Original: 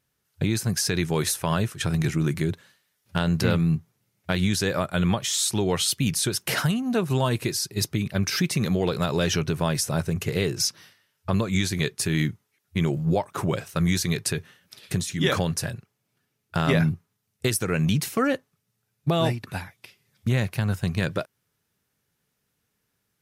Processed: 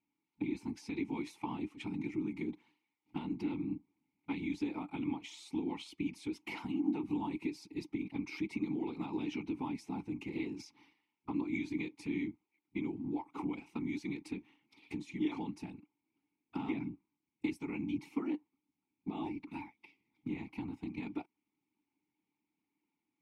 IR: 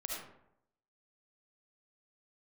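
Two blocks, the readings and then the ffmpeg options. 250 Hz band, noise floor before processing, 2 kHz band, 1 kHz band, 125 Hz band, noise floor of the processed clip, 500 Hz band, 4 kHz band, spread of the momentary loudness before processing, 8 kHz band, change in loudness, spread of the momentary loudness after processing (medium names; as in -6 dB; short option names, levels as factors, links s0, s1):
-9.5 dB, -77 dBFS, -17.0 dB, -14.5 dB, -24.0 dB, under -85 dBFS, -18.5 dB, -24.5 dB, 8 LU, under -30 dB, -14.5 dB, 9 LU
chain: -filter_complex "[0:a]afftfilt=real='hypot(re,im)*cos(2*PI*random(0))':imag='hypot(re,im)*sin(2*PI*random(1))':win_size=512:overlap=0.75,acompressor=threshold=0.0251:ratio=6,asplit=3[s0][s1][s2];[s0]bandpass=f=300:t=q:w=8,volume=1[s3];[s1]bandpass=f=870:t=q:w=8,volume=0.501[s4];[s2]bandpass=f=2240:t=q:w=8,volume=0.355[s5];[s3][s4][s5]amix=inputs=3:normalize=0,volume=3.16"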